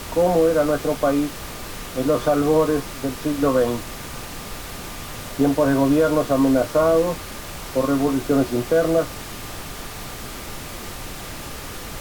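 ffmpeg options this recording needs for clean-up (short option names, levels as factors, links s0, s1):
-af "bandreject=f=1200:w=30,afftdn=nr=30:nf=-34"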